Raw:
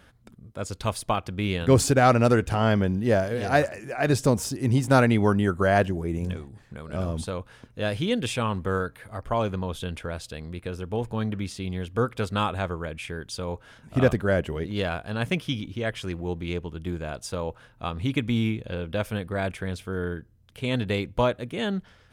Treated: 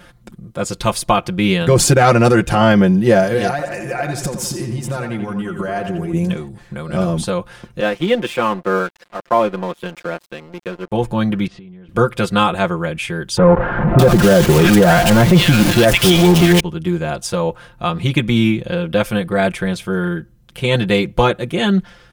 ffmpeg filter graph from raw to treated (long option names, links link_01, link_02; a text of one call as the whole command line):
ffmpeg -i in.wav -filter_complex "[0:a]asettb=1/sr,asplit=3[link_01][link_02][link_03];[link_01]atrim=end=3.504[link_04];[link_02]atrim=start=3.5:end=6.13,asetpts=PTS-STARTPTS,afade=type=in:duration=0.004:curve=qsin,afade=type=out:start_time=2.626:duration=0.004:curve=qsin,acompressor=threshold=-30dB:ratio=12:attack=3.2:release=140:knee=1:detection=peak,asplit=2[link_05][link_06];[link_06]adelay=86,lowpass=frequency=4800:poles=1,volume=-7dB,asplit=2[link_07][link_08];[link_08]adelay=86,lowpass=frequency=4800:poles=1,volume=0.51,asplit=2[link_09][link_10];[link_10]adelay=86,lowpass=frequency=4800:poles=1,volume=0.51,asplit=2[link_11][link_12];[link_12]adelay=86,lowpass=frequency=4800:poles=1,volume=0.51,asplit=2[link_13][link_14];[link_14]adelay=86,lowpass=frequency=4800:poles=1,volume=0.51,asplit=2[link_15][link_16];[link_16]adelay=86,lowpass=frequency=4800:poles=1,volume=0.51[link_17];[link_05][link_07][link_09][link_11][link_13][link_15][link_17]amix=inputs=7:normalize=0,atrim=end_sample=115983[link_18];[link_03]atrim=start=6.126[link_19];[link_04][link_18]acrossfade=duration=0.004:curve1=hsin:curve2=qsin[link_20];[link_20][link_19]acrossfade=duration=0.004:curve1=qsin:curve2=hsin,asettb=1/sr,asplit=3[link_21][link_22][link_23];[link_21]atrim=end=7.804[link_24];[link_22]atrim=start=7.8:end=10.92,asetpts=PTS-STARTPTS,afade=type=in:duration=0.004:curve=qsin,afade=type=out:start_time=3.116:duration=0.004:curve=qsin,acrossover=split=190 2900:gain=0.0794 1 0.224[link_25][link_26][link_27];[link_25][link_26][link_27]amix=inputs=3:normalize=0,aeval=exprs='sgn(val(0))*max(abs(val(0))-0.00631,0)':channel_layout=same[link_28];[link_23]atrim=start=10.916[link_29];[link_24][link_28]acrossfade=duration=0.004:curve1=hsin:curve2=qsin[link_30];[link_30][link_29]acrossfade=duration=0.004:curve1=qsin:curve2=hsin,asettb=1/sr,asplit=3[link_31][link_32][link_33];[link_31]atrim=end=11.474[link_34];[link_32]atrim=start=11.47:end=11.89,asetpts=PTS-STARTPTS,afade=type=in:duration=0.004:curve=qsin,afade=type=out:start_time=0.416:duration=0.004:curve=qsin,lowpass=1900,acompressor=threshold=-46dB:ratio=10:attack=3.2:release=140:knee=1:detection=peak[link_35];[link_33]atrim=start=11.886[link_36];[link_34][link_35]acrossfade=duration=0.004:curve1=hsin:curve2=qsin[link_37];[link_37][link_36]acrossfade=duration=0.004:curve1=qsin:curve2=hsin,asettb=1/sr,asplit=3[link_38][link_39][link_40];[link_38]atrim=end=13.374[link_41];[link_39]atrim=start=13.37:end=16.6,asetpts=PTS-STARTPTS,afade=type=in:duration=0.004:curve=qsin,afade=type=out:start_time=3.226:duration=0.004:curve=qsin,aeval=exprs='val(0)+0.5*0.0422*sgn(val(0))':channel_layout=same,acrossover=split=1600[link_42][link_43];[link_43]adelay=620[link_44];[link_42][link_44]amix=inputs=2:normalize=0,atrim=end_sample=142443,acontrast=51[link_45];[link_40]atrim=start=16.596[link_46];[link_41][link_45]acrossfade=duration=0.004:curve1=hsin:curve2=qsin[link_47];[link_47][link_46]acrossfade=duration=0.004:curve1=qsin:curve2=hsin,aecho=1:1:5.7:0.85,alimiter=level_in=10.5dB:limit=-1dB:release=50:level=0:latency=1,volume=-1dB" out.wav